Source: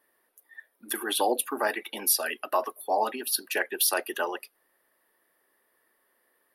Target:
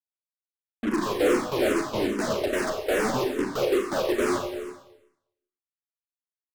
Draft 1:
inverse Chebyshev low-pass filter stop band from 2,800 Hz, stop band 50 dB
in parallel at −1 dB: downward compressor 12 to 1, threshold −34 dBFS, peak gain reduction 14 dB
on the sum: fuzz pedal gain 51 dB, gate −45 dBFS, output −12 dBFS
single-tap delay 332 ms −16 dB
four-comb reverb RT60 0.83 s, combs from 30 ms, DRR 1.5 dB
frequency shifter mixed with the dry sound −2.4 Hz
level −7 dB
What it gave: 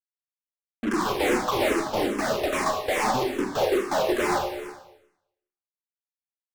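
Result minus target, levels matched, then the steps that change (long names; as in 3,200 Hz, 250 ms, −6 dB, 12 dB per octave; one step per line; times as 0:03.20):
1,000 Hz band +4.5 dB
change: inverse Chebyshev low-pass filter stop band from 1,300 Hz, stop band 50 dB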